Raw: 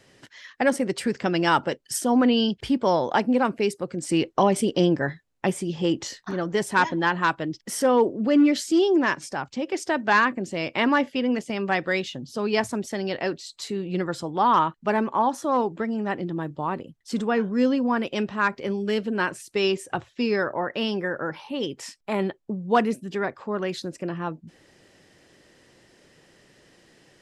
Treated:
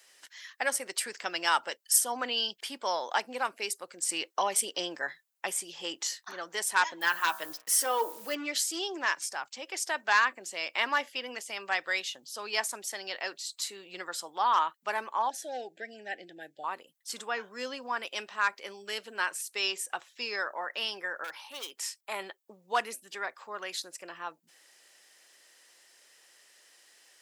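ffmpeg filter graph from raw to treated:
-filter_complex "[0:a]asettb=1/sr,asplit=3[s0][s1][s2];[s0]atrim=end=7.014[s3];[s1]atrim=start=7.01:end=8.35,asetpts=PTS-STARTPTS,afade=t=in:d=0.004:c=qsin,afade=t=out:st=1.336:d=0.004:c=qsin,aecho=1:1:6.4:0.51,atrim=end_sample=59094,bandreject=f=60.01:t=h:w=4,bandreject=f=120.02:t=h:w=4,bandreject=f=180.03:t=h:w=4,bandreject=f=240.04:t=h:w=4,bandreject=f=300.05:t=h:w=4,bandreject=f=360.06:t=h:w=4,bandreject=f=420.07:t=h:w=4,bandreject=f=480.08:t=h:w=4,bandreject=f=540.09:t=h:w=4,bandreject=f=600.1:t=h:w=4,bandreject=f=660.11:t=h:w=4,bandreject=f=720.12:t=h:w=4,bandreject=f=780.13:t=h:w=4,bandreject=f=840.14:t=h:w=4,bandreject=f=900.15:t=h:w=4,bandreject=f=960.16:t=h:w=4,bandreject=f=1020.17:t=h:w=4,bandreject=f=1080.18:t=h:w=4,bandreject=f=1140.19:t=h:w=4,bandreject=f=1200.2:t=h:w=4,bandreject=f=1260.21:t=h:w=4,bandreject=f=1320.22:t=h:w=4,bandreject=f=1380.23:t=h:w=4,bandreject=f=1440.24:t=h:w=4,bandreject=f=1500.25:t=h:w=4,bandreject=f=1560.26:t=h:w=4,bandreject=f=1620.27:t=h:w=4,bandreject=f=1680.28:t=h:w=4,bandreject=f=1740.29:t=h:w=4,acrusher=bits=7:mix=0:aa=0.5[s4];[s2]atrim=start=8.346[s5];[s3][s4]acrossfade=d=0.004:c1=hsin:c2=qsin[s6];[s6][s5]acrossfade=d=0.004:c1=qsin:c2=hsin,asettb=1/sr,asplit=3[s7][s8][s9];[s7]atrim=end=15.304[s10];[s8]atrim=start=15.3:end=16.64,asetpts=PTS-STARTPTS,afade=t=in:d=0.004:c=qsin,afade=t=out:st=1.336:d=0.004:c=qsin,asuperstop=centerf=1100:order=12:qfactor=1.5,highshelf=f=7200:g=-8.5[s11];[s9]atrim=start=16.636[s12];[s10][s11]acrossfade=d=0.004:c1=hsin:c2=qsin[s13];[s13][s12]acrossfade=d=0.004:c1=qsin:c2=hsin,asettb=1/sr,asplit=3[s14][s15][s16];[s14]atrim=end=21.244[s17];[s15]atrim=start=21.24:end=21.86,asetpts=PTS-STARTPTS,afade=t=in:d=0.004:c=qsin,afade=t=out:st=0.616:d=0.004:c=qsin,highpass=f=310:p=1,asoftclip=type=hard:threshold=0.0376[s18];[s16]atrim=start=21.856[s19];[s17][s18]acrossfade=d=0.004:c1=hsin:c2=qsin[s20];[s20][s19]acrossfade=d=0.004:c1=qsin:c2=hsin,highpass=850,aemphasis=mode=production:type=50fm,volume=0.631"

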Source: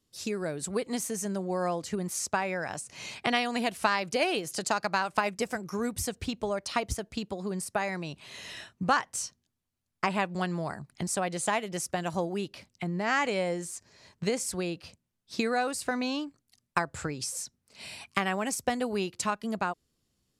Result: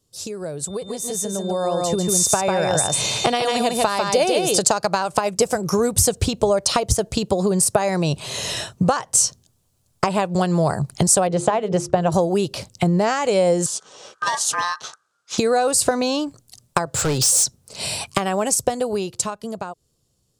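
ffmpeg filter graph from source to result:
-filter_complex "[0:a]asettb=1/sr,asplit=3[s0][s1][s2];[s0]atrim=end=0.674[s3];[s1]atrim=start=0.67:end=4.58,asetpts=PTS-STARTPTS,afade=t=in:d=0.004:c=qsin,afade=t=out:st=3.906:d=0.004:c=qsin,aeval=exprs='val(0)+0.00447*sin(2*PI*3600*n/s)':c=same,aecho=1:1:147:0.596,atrim=end_sample=172431[s4];[s2]atrim=start=4.576[s5];[s3][s4]acrossfade=d=0.004:c1=hsin:c2=qsin[s6];[s6][s5]acrossfade=d=0.004:c1=qsin:c2=hsin,asettb=1/sr,asplit=3[s7][s8][s9];[s7]atrim=end=11.274[s10];[s8]atrim=start=11.27:end=12.12,asetpts=PTS-STARTPTS,afade=t=in:d=0.004:c=qsin,afade=t=out:st=0.846:d=0.004:c=qsin,lowpass=f=3900:p=1,aemphasis=mode=reproduction:type=75kf,bandreject=f=50:t=h:w=6,bandreject=f=100:t=h:w=6,bandreject=f=150:t=h:w=6,bandreject=f=200:t=h:w=6,bandreject=f=250:t=h:w=6,bandreject=f=300:t=h:w=6,bandreject=f=350:t=h:w=6,bandreject=f=400:t=h:w=6,bandreject=f=450:t=h:w=6[s11];[s9]atrim=start=12.116[s12];[s10][s11]acrossfade=d=0.004:c1=hsin:c2=qsin[s13];[s13][s12]acrossfade=d=0.004:c1=qsin:c2=hsin,asettb=1/sr,asplit=3[s14][s15][s16];[s14]atrim=end=13.664[s17];[s15]atrim=start=13.66:end=15.38,asetpts=PTS-STARTPTS,afade=t=in:d=0.004:c=qsin,afade=t=out:st=1.716:d=0.004:c=qsin,aeval=exprs='val(0)*sin(2*PI*1400*n/s)':c=same,asoftclip=type=hard:threshold=0.0631,highpass=140,lowpass=6700[s18];[s16]atrim=start=15.376[s19];[s17][s18]acrossfade=d=0.004:c1=hsin:c2=qsin[s20];[s20][s19]acrossfade=d=0.004:c1=qsin:c2=hsin,asettb=1/sr,asplit=3[s21][s22][s23];[s21]atrim=end=16.864[s24];[s22]atrim=start=16.86:end=17.44,asetpts=PTS-STARTPTS,afade=t=in:d=0.004:c=qsin,afade=t=out:st=0.576:d=0.004:c=qsin,highpass=110,equalizer=f=3400:t=o:w=2.1:g=6,volume=59.6,asoftclip=hard,volume=0.0168[s25];[s23]atrim=start=17.436[s26];[s24][s25]acrossfade=d=0.004:c1=hsin:c2=qsin[s27];[s27][s26]acrossfade=d=0.004:c1=qsin:c2=hsin,acompressor=threshold=0.0224:ratio=12,equalizer=f=125:t=o:w=1:g=6,equalizer=f=250:t=o:w=1:g=-6,equalizer=f=500:t=o:w=1:g=5,equalizer=f=2000:t=o:w=1:g=-9,equalizer=f=8000:t=o:w=1:g=5,dynaudnorm=f=200:g=17:m=3.98,volume=2"

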